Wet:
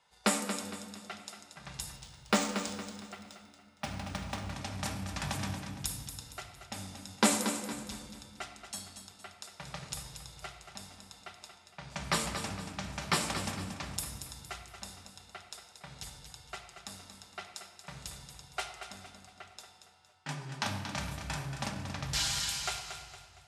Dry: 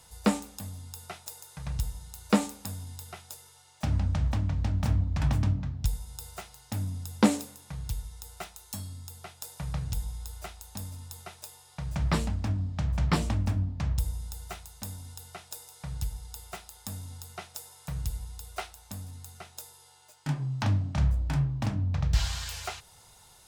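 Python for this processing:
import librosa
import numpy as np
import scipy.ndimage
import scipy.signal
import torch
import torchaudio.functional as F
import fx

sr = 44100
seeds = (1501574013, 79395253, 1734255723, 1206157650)

y = fx.law_mismatch(x, sr, coded='A')
y = scipy.signal.sosfilt(scipy.signal.cheby1(5, 1.0, 12000.0, 'lowpass', fs=sr, output='sos'), y)
y = fx.tilt_eq(y, sr, slope=2.5)
y = fx.env_lowpass(y, sr, base_hz=2400.0, full_db=-30.0)
y = fx.low_shelf(y, sr, hz=160.0, db=-10.5)
y = fx.echo_feedback(y, sr, ms=231, feedback_pct=39, wet_db=-9.0)
y = fx.room_shoebox(y, sr, seeds[0], volume_m3=2500.0, walls='mixed', distance_m=1.2)
y = fx.resample_linear(y, sr, factor=3, at=(1.96, 4.51))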